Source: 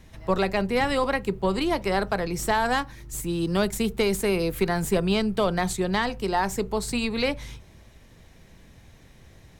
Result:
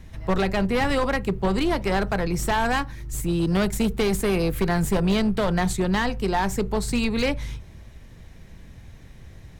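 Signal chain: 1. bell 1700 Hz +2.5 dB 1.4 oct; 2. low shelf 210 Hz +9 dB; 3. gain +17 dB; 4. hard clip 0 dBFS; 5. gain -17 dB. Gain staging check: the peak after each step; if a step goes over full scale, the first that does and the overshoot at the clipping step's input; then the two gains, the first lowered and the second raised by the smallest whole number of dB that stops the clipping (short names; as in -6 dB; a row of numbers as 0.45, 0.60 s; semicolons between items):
-10.0, -8.0, +9.0, 0.0, -17.0 dBFS; step 3, 9.0 dB; step 3 +8 dB, step 5 -8 dB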